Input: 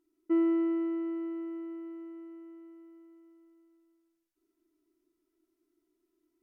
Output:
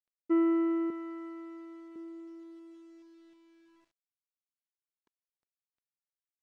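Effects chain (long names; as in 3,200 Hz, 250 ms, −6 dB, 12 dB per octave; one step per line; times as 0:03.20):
dynamic equaliser 1,400 Hz, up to +7 dB, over −54 dBFS, Q 1.2
0:00.90–0:01.96: high-pass filter 660 Hz 6 dB per octave
bit reduction 11 bits
high-frequency loss of the air 100 metres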